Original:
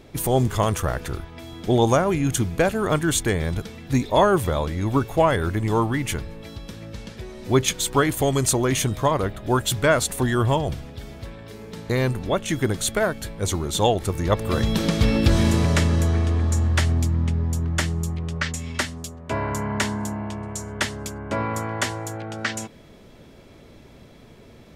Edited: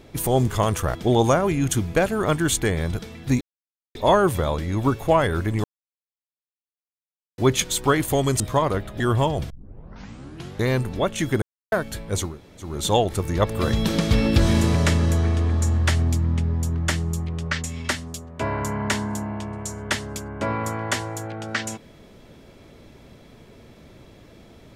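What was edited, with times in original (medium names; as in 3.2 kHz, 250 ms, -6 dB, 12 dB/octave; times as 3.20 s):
0.95–1.58 s: delete
4.04 s: insert silence 0.54 s
5.73–7.47 s: mute
8.49–8.89 s: delete
9.49–10.30 s: delete
10.80 s: tape start 1.18 s
12.72–13.02 s: mute
13.59 s: insert room tone 0.40 s, crossfade 0.24 s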